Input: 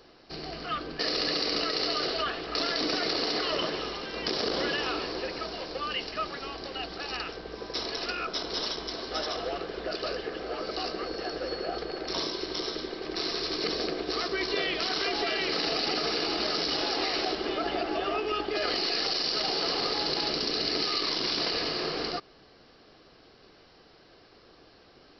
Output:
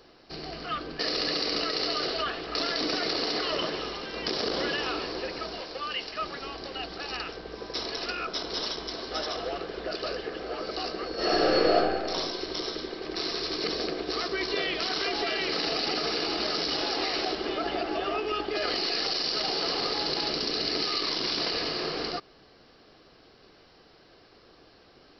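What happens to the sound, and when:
0:05.61–0:06.22: low-shelf EQ 380 Hz −6.5 dB
0:11.14–0:11.73: thrown reverb, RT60 1.6 s, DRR −11 dB

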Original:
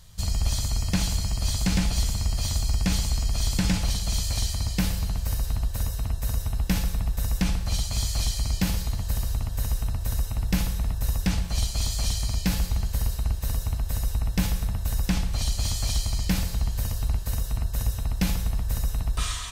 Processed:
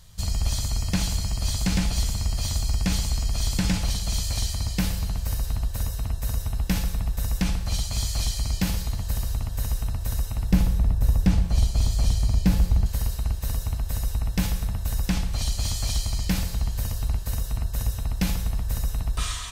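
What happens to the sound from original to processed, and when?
0:10.52–0:12.86: tilt shelving filter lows +5.5 dB, about 920 Hz

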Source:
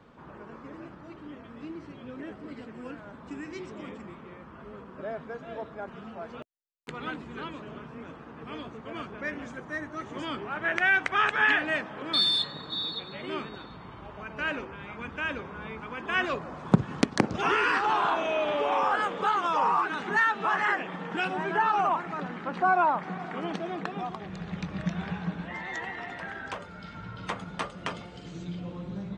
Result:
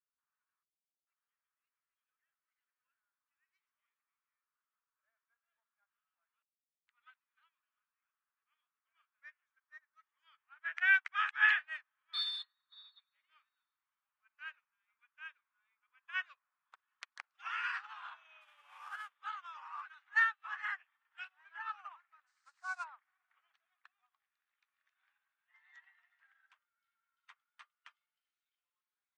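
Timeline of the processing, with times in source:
0:00.63–0:01.07: inverse Chebyshev low-pass filter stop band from 1,700 Hz, stop band 80 dB
0:18.41–0:19.16: variable-slope delta modulation 64 kbit/s
0:22.26–0:22.83: noise in a band 3,900–8,600 Hz −44 dBFS
whole clip: high-pass filter 1,300 Hz 24 dB per octave; high-shelf EQ 4,800 Hz −12 dB; expander for the loud parts 2.5 to 1, over −48 dBFS

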